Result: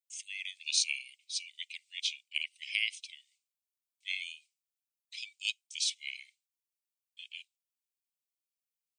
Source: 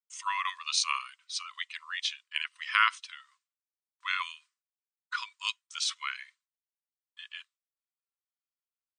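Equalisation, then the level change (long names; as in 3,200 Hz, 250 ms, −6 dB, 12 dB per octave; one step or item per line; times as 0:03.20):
Butterworth high-pass 2,200 Hz 96 dB per octave
parametric band 3,600 Hz −5 dB 2 octaves
+3.5 dB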